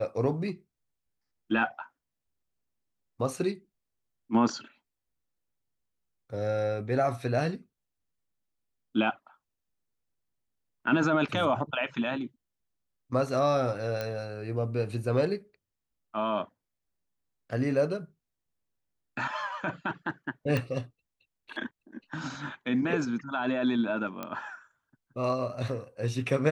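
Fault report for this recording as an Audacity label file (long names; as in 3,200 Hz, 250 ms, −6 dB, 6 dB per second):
14.010000	14.010000	click −19 dBFS
20.570000	20.570000	click −16 dBFS
24.230000	24.230000	click −20 dBFS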